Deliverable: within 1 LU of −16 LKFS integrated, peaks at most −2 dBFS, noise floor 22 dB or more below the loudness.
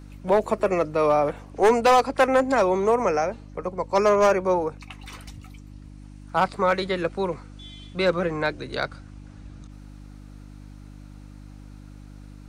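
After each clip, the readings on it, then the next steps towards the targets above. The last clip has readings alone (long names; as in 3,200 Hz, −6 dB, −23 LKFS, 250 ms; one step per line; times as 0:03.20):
share of clipped samples 0.7%; peaks flattened at −12.5 dBFS; mains hum 50 Hz; hum harmonics up to 300 Hz; level of the hum −41 dBFS; integrated loudness −22.5 LKFS; sample peak −12.5 dBFS; target loudness −16.0 LKFS
→ clipped peaks rebuilt −12.5 dBFS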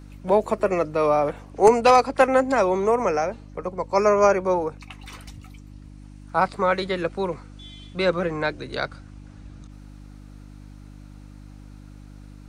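share of clipped samples 0.0%; mains hum 50 Hz; hum harmonics up to 300 Hz; level of the hum −41 dBFS
→ hum removal 50 Hz, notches 6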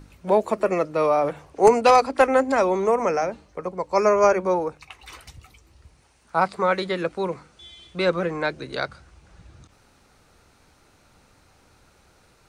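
mains hum none found; integrated loudness −22.0 LKFS; sample peak −3.5 dBFS; target loudness −16.0 LKFS
→ level +6 dB
brickwall limiter −2 dBFS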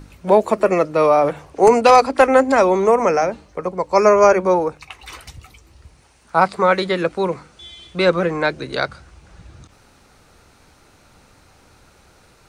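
integrated loudness −16.5 LKFS; sample peak −2.0 dBFS; background noise floor −53 dBFS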